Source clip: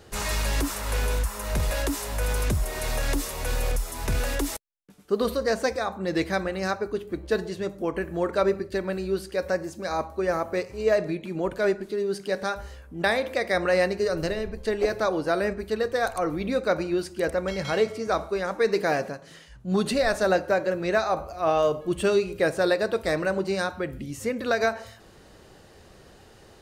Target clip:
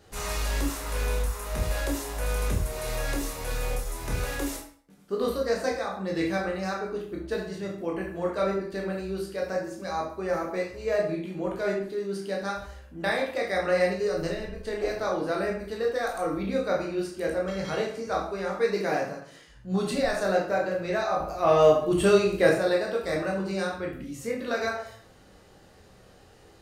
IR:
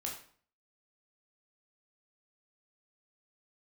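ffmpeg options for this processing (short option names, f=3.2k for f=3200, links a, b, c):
-filter_complex "[0:a]asettb=1/sr,asplit=3[a][b][c];[a]atrim=end=21.204[d];[b]atrim=start=21.2:end=22.54,asetpts=PTS-STARTPTS,afade=t=in:d=0.004:c=qsin,afade=t=out:st=1.336:d=0.004:c=qsin,acontrast=72[e];[c]atrim=start=22.536[f];[d][e]acrossfade=d=0.004:c1=hsin:c2=qsin[g];[g][f]acrossfade=d=0.004:c1=qsin:c2=hsin[h];[1:a]atrim=start_sample=2205,asetrate=42777,aresample=44100[i];[h][i]afir=irnorm=-1:irlink=0,volume=-3.5dB"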